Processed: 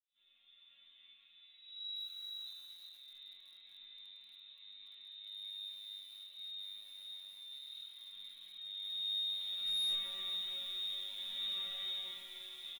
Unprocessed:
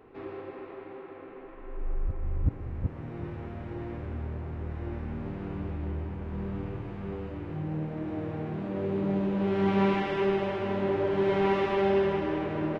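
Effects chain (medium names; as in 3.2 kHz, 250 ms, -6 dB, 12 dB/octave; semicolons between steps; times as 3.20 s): fade-in on the opening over 0.96 s; band-stop 940 Hz, Q 23; comb 6 ms, depth 60%; feedback echo behind a low-pass 318 ms, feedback 59%, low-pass 480 Hz, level -20.5 dB; frequency inversion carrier 3.9 kHz; bass shelf 240 Hz +11 dB; chord resonator F#3 major, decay 0.69 s; overload inside the chain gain 34 dB; on a send at -24 dB: reverberation RT60 2.3 s, pre-delay 44 ms; on the sum: bit-crushed delay 237 ms, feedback 80%, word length 9-bit, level -11 dB; trim +1 dB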